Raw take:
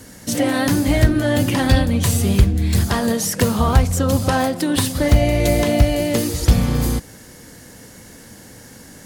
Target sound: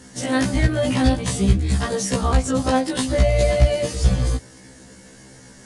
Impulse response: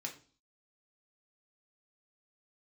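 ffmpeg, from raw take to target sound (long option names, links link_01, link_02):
-af "aresample=22050,aresample=44100,atempo=1.6,afftfilt=real='re*1.73*eq(mod(b,3),0)':imag='im*1.73*eq(mod(b,3),0)':win_size=2048:overlap=0.75"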